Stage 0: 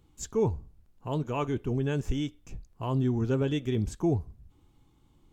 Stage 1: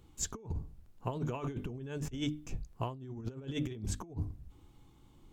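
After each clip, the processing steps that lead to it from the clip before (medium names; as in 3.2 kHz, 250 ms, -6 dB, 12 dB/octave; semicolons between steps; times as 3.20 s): hum notches 50/100/150/200/250/300 Hz; compressor with a negative ratio -34 dBFS, ratio -0.5; trim -2.5 dB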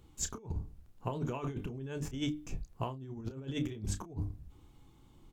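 doubling 30 ms -11 dB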